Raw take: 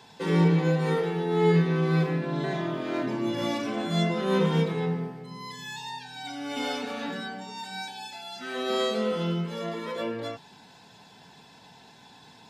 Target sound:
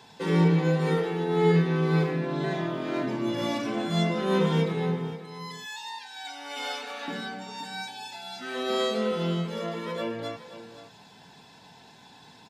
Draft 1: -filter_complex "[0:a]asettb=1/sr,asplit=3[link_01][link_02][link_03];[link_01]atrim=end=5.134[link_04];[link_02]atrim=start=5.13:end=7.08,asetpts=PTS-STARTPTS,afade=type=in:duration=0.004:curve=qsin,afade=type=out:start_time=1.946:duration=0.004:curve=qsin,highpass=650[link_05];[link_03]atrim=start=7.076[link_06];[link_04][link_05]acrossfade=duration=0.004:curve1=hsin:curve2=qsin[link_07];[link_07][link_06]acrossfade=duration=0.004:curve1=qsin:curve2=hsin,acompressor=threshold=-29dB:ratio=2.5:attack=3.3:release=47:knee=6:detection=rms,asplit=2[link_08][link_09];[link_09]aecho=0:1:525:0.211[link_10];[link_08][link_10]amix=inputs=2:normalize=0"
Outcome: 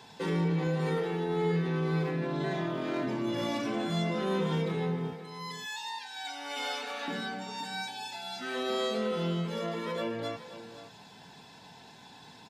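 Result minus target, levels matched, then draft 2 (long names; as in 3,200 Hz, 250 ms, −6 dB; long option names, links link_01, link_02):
downward compressor: peak gain reduction +9 dB
-filter_complex "[0:a]asettb=1/sr,asplit=3[link_01][link_02][link_03];[link_01]atrim=end=5.134[link_04];[link_02]atrim=start=5.13:end=7.08,asetpts=PTS-STARTPTS,afade=type=in:duration=0.004:curve=qsin,afade=type=out:start_time=1.946:duration=0.004:curve=qsin,highpass=650[link_05];[link_03]atrim=start=7.076[link_06];[link_04][link_05]acrossfade=duration=0.004:curve1=hsin:curve2=qsin[link_07];[link_07][link_06]acrossfade=duration=0.004:curve1=qsin:curve2=hsin,asplit=2[link_08][link_09];[link_09]aecho=0:1:525:0.211[link_10];[link_08][link_10]amix=inputs=2:normalize=0"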